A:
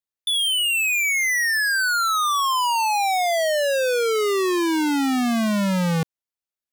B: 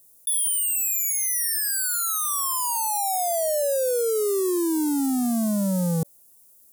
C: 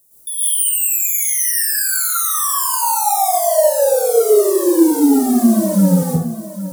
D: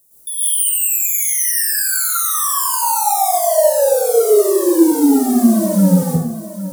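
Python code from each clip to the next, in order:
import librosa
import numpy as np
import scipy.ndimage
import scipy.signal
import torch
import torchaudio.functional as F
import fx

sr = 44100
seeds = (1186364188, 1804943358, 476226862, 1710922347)

y1 = fx.curve_eq(x, sr, hz=(570.0, 2400.0, 9800.0), db=(0, -24, 10))
y1 = fx.env_flatten(y1, sr, amount_pct=50)
y1 = y1 * librosa.db_to_amplitude(-2.0)
y2 = fx.echo_feedback(y1, sr, ms=808, feedback_pct=17, wet_db=-13.0)
y2 = fx.rev_plate(y2, sr, seeds[0], rt60_s=0.6, hf_ratio=0.55, predelay_ms=100, drr_db=-9.5)
y2 = y2 * librosa.db_to_amplitude(-1.0)
y3 = y2 + 10.0 ** (-12.0 / 20.0) * np.pad(y2, (int(93 * sr / 1000.0), 0))[:len(y2)]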